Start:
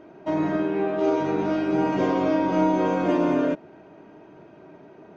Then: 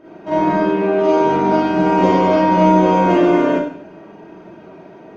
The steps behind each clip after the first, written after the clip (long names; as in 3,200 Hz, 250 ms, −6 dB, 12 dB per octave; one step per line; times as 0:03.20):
four-comb reverb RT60 0.56 s, combs from 33 ms, DRR −8.5 dB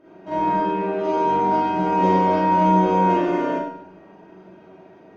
tuned comb filter 94 Hz, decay 0.56 s, harmonics all, mix 70%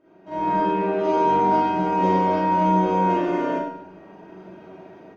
automatic gain control gain up to 11 dB
level −7.5 dB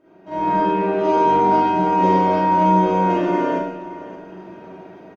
repeating echo 574 ms, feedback 33%, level −16 dB
level +3 dB